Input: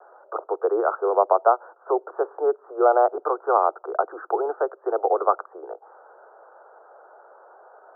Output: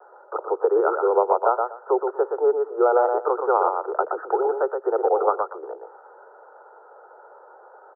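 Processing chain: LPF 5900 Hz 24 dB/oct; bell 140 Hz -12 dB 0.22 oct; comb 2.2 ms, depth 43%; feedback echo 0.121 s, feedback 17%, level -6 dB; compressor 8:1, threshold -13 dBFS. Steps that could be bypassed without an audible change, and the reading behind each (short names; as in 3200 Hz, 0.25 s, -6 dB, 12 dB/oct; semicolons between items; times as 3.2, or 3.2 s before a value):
LPF 5900 Hz: input band ends at 1600 Hz; bell 140 Hz: input band starts at 290 Hz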